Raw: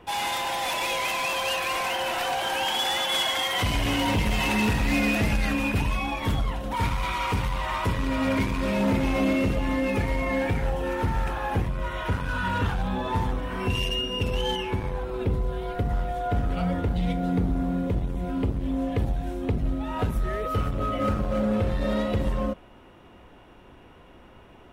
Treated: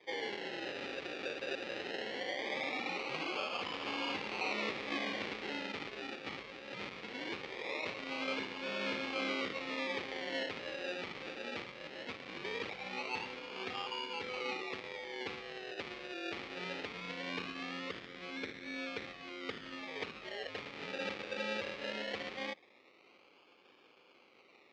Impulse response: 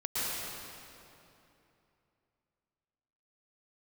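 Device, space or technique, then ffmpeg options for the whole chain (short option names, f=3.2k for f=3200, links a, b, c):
circuit-bent sampling toy: -af "acrusher=samples=32:mix=1:aa=0.000001:lfo=1:lforange=19.2:lforate=0.2,highpass=550,equalizer=f=670:t=q:w=4:g=-10,equalizer=f=960:t=q:w=4:g=-9,equalizer=f=1.5k:t=q:w=4:g=-7,equalizer=f=2.3k:t=q:w=4:g=5,lowpass=f=4.3k:w=0.5412,lowpass=f=4.3k:w=1.3066,volume=-5dB"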